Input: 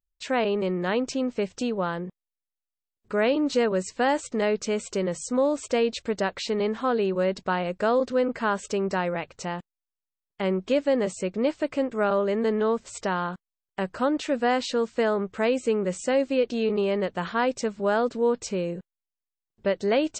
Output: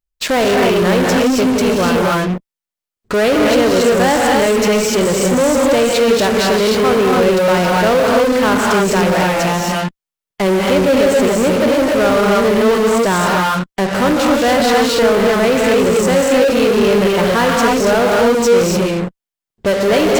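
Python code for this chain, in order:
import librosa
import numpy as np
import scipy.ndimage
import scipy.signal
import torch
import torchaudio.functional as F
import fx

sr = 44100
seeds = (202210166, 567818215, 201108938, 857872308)

p1 = fx.rev_gated(x, sr, seeds[0], gate_ms=310, shape='rising', drr_db=-1.5)
p2 = fx.fuzz(p1, sr, gain_db=40.0, gate_db=-41.0)
p3 = p1 + (p2 * 10.0 ** (-5.5 / 20.0))
y = p3 * 10.0 ** (2.5 / 20.0)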